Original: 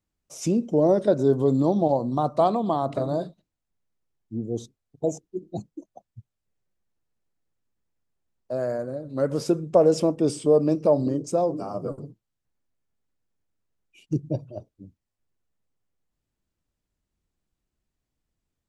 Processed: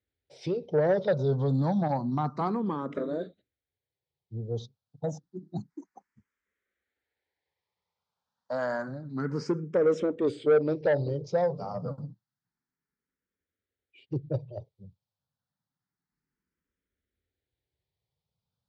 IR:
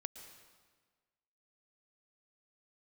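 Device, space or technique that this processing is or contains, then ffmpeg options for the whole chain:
barber-pole phaser into a guitar amplifier: -filter_complex "[0:a]asplit=3[a][b][c];[a]afade=t=out:st=5.69:d=0.02[d];[b]equalizer=f=125:t=o:w=1:g=-10,equalizer=f=250:t=o:w=1:g=3,equalizer=f=1k:t=o:w=1:g=10,equalizer=f=2k:t=o:w=1:g=9,equalizer=f=8k:t=o:w=1:g=12,afade=t=in:st=5.69:d=0.02,afade=t=out:st=8.87:d=0.02[e];[c]afade=t=in:st=8.87:d=0.02[f];[d][e][f]amix=inputs=3:normalize=0,asplit=2[g][h];[h]afreqshift=0.29[i];[g][i]amix=inputs=2:normalize=1,asoftclip=type=tanh:threshold=-17dB,highpass=97,equalizer=f=220:t=q:w=4:g=-5,equalizer=f=320:t=q:w=4:g=-8,equalizer=f=660:t=q:w=4:g=-8,equalizer=f=1.1k:t=q:w=4:g=-6,equalizer=f=2.7k:t=q:w=4:g=-9,lowpass=f=4.6k:w=0.5412,lowpass=f=4.6k:w=1.3066,volume=3.5dB"

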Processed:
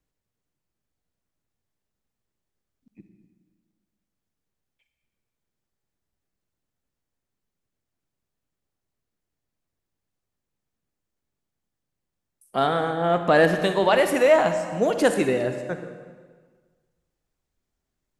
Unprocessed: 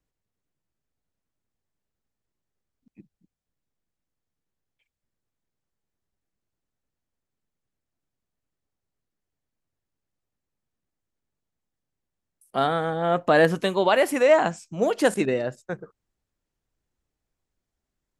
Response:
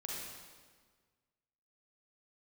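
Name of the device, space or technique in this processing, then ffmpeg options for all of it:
saturated reverb return: -filter_complex "[0:a]asplit=2[a][b];[1:a]atrim=start_sample=2205[c];[b][c]afir=irnorm=-1:irlink=0,asoftclip=type=tanh:threshold=-15dB,volume=-2.5dB[d];[a][d]amix=inputs=2:normalize=0,volume=-2dB"

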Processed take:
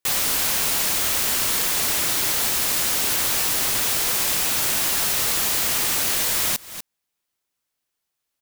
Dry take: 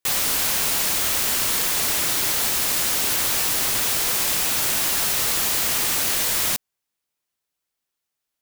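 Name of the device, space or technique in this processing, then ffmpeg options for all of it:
ducked delay: -filter_complex "[0:a]asplit=3[a][b][c];[b]adelay=244,volume=-2.5dB[d];[c]apad=whole_len=382024[e];[d][e]sidechaincompress=threshold=-45dB:ratio=5:attack=7.9:release=205[f];[a][f]amix=inputs=2:normalize=0"

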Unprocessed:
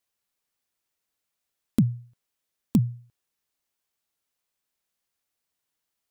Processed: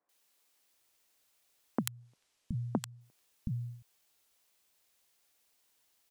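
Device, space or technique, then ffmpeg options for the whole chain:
serial compression, peaks first: -filter_complex "[0:a]lowshelf=f=340:g=-5,asettb=1/sr,asplit=3[a][b][c];[a]atrim=end=1.804[d];[b]atrim=start=1.8:end=2.92,asetpts=PTS-STARTPTS,afade=t=in:d=0.004:c=qsin,afade=t=out:st=1.116:d=0.004:c=qsin,lowpass=8.4k[e];[c]atrim=start=2.916[f];[d][e]acrossfade=d=0.004:c1=hsin:c2=qsin[g];[g][f]acrossfade=d=0.004:c1=qsin:c2=hsin,acompressor=threshold=-31dB:ratio=6,acompressor=threshold=-38dB:ratio=2.5,acrossover=split=170|1400[h][i][j];[j]adelay=90[k];[h]adelay=720[l];[l][i][k]amix=inputs=3:normalize=0,volume=10dB"

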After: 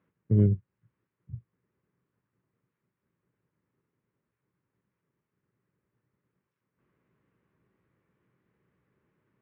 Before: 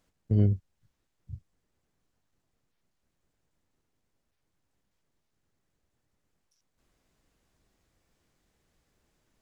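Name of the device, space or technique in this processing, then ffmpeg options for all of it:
bass cabinet: -af "highpass=f=73:w=0.5412,highpass=f=73:w=1.3066,equalizer=f=83:t=q:w=4:g=-8,equalizer=f=120:t=q:w=4:g=7,equalizer=f=180:t=q:w=4:g=5,equalizer=f=390:t=q:w=4:g=5,equalizer=f=720:t=q:w=4:g=-10,equalizer=f=1.1k:t=q:w=4:g=3,lowpass=f=2.3k:w=0.5412,lowpass=f=2.3k:w=1.3066"

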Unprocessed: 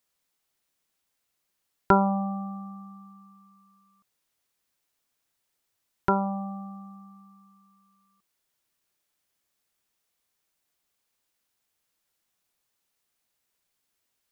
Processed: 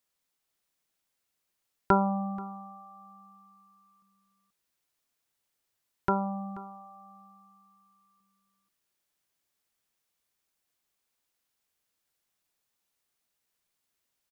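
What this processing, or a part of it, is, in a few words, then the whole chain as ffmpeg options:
ducked delay: -filter_complex "[0:a]asplit=3[a][b][c];[b]adelay=482,volume=-7dB[d];[c]apad=whole_len=652365[e];[d][e]sidechaincompress=threshold=-45dB:ratio=5:attack=16:release=451[f];[a][f]amix=inputs=2:normalize=0,volume=-3.5dB"

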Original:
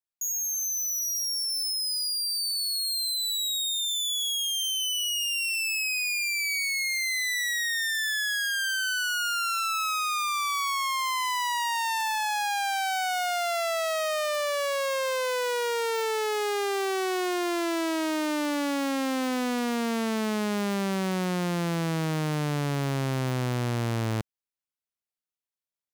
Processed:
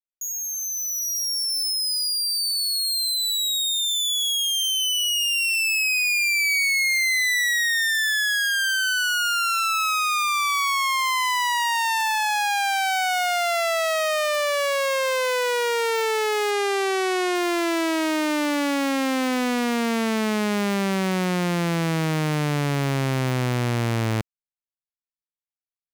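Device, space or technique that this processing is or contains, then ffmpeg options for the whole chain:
voice memo with heavy noise removal: -filter_complex "[0:a]asettb=1/sr,asplit=3[a][b][c];[a]atrim=end=16.514[d];[b]atrim=start=16.51:end=17.35,asetpts=PTS-STARTPTS,afade=t=in:d=0.004:c=qsin,afade=t=out:st=0.836:d=0.004:c=qsin,lowpass=f=12k:w=0.5412,lowpass=f=12k:w=1.3066[e];[c]atrim=start=17.346[f];[d][e]acrossfade=d=0.004:c1=hsin:c2=qsin[g];[g][f]acrossfade=d=0.004:c1=qsin:c2=hsin,anlmdn=0.1,dynaudnorm=f=120:g=17:m=4.5dB,equalizer=f=2.2k:w=2:g=3.5"

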